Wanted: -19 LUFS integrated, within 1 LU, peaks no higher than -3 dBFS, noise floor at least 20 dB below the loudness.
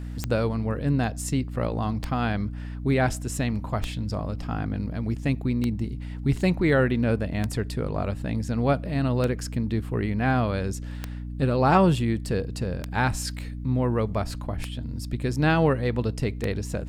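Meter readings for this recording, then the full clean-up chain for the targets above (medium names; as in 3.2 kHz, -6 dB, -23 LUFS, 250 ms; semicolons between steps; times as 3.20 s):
clicks found 10; hum 60 Hz; highest harmonic 300 Hz; hum level -32 dBFS; loudness -26.5 LUFS; peak level -8.0 dBFS; loudness target -19.0 LUFS
-> de-click; de-hum 60 Hz, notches 5; trim +7.5 dB; peak limiter -3 dBFS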